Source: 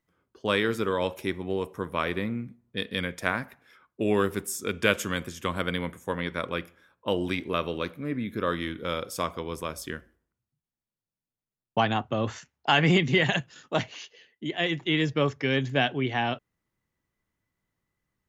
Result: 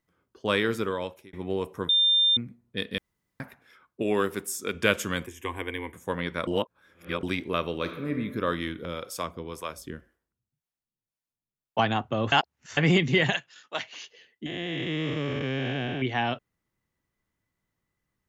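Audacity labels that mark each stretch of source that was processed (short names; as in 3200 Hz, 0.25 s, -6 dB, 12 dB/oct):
0.770000	1.330000	fade out
1.890000	2.370000	bleep 3600 Hz -18 dBFS
2.980000	3.400000	room tone
4.020000	4.750000	HPF 220 Hz 6 dB/oct
5.260000	5.940000	fixed phaser centre 890 Hz, stages 8
6.470000	7.230000	reverse
7.750000	8.200000	reverb throw, RT60 1.2 s, DRR 5.5 dB
8.850000	11.790000	harmonic tremolo 1.9 Hz, crossover 460 Hz
12.320000	12.770000	reverse
13.350000	13.930000	band-pass 2900 Hz, Q 0.51
14.460000	16.020000	time blur width 0.416 s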